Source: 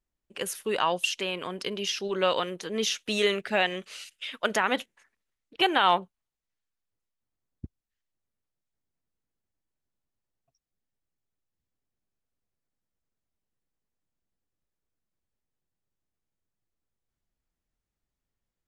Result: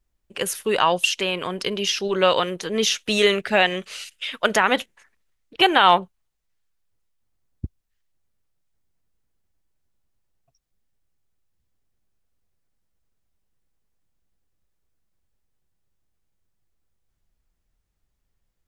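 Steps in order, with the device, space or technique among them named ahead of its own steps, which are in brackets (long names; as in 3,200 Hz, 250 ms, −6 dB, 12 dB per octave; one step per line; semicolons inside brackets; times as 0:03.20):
low shelf boost with a cut just above (low-shelf EQ 91 Hz +8 dB; parametric band 260 Hz −2.5 dB 0.77 octaves)
level +7 dB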